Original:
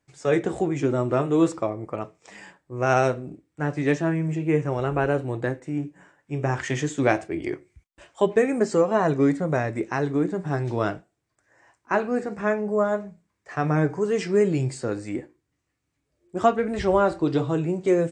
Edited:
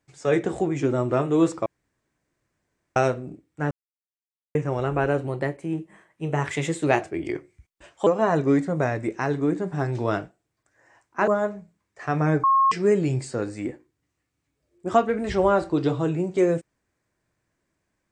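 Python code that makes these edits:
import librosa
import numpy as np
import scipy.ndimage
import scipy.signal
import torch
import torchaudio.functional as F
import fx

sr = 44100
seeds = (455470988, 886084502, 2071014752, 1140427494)

y = fx.edit(x, sr, fx.room_tone_fill(start_s=1.66, length_s=1.3),
    fx.silence(start_s=3.71, length_s=0.84),
    fx.speed_span(start_s=5.27, length_s=1.92, speed=1.1),
    fx.cut(start_s=8.24, length_s=0.55),
    fx.cut(start_s=12.0, length_s=0.77),
    fx.bleep(start_s=13.93, length_s=0.28, hz=1080.0, db=-15.0), tone=tone)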